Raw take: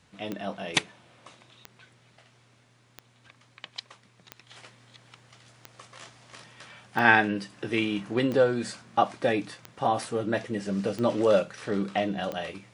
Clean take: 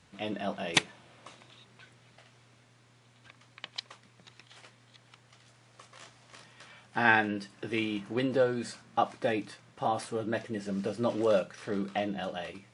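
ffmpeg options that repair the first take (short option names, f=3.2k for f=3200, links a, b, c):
-af "adeclick=t=4,asetnsamples=n=441:p=0,asendcmd='4.47 volume volume -4.5dB',volume=0dB"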